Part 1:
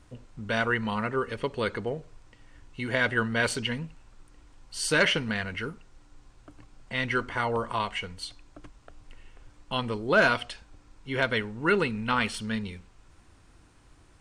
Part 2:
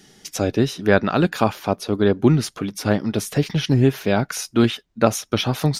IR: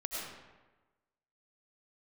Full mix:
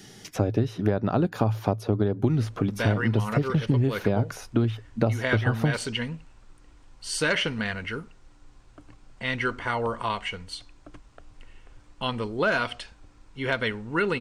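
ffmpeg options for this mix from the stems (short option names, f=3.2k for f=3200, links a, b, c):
-filter_complex "[0:a]highshelf=f=11k:g=-4.5,adelay=2300,volume=1dB[a];[1:a]equalizer=f=110:w=5.8:g=13.5,acrossover=split=1100|2500[b][c][d];[b]acompressor=threshold=-15dB:ratio=4[e];[c]acompressor=threshold=-47dB:ratio=4[f];[d]acompressor=threshold=-49dB:ratio=4[g];[e][f][g]amix=inputs=3:normalize=0,volume=2.5dB[h];[a][h]amix=inputs=2:normalize=0,acompressor=threshold=-20dB:ratio=4"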